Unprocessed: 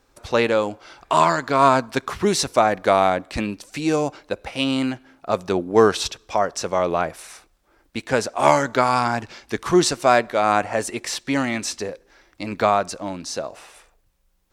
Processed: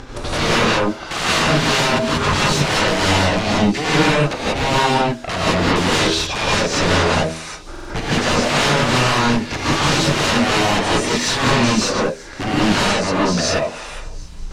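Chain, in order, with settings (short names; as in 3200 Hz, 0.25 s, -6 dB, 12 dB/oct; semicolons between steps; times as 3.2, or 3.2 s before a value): low shelf 280 Hz +5.5 dB; de-hum 80.89 Hz, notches 8; transient shaper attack +7 dB, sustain -5 dB; upward compressor, threshold -31 dBFS; sine folder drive 13 dB, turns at -11 dBFS; air absorption 89 m; thin delay 0.372 s, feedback 74%, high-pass 5500 Hz, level -18 dB; non-linear reverb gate 0.21 s rising, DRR -7.5 dB; stuck buffer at 7.71, samples 2048, times 3; gain -8.5 dB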